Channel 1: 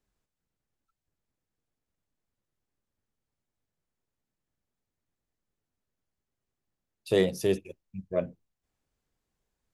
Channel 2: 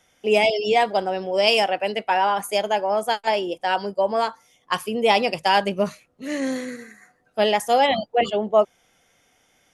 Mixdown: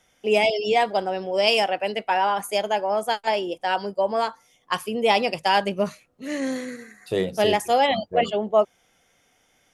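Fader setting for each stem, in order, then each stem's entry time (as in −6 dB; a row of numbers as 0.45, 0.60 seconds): −0.5, −1.5 decibels; 0.00, 0.00 seconds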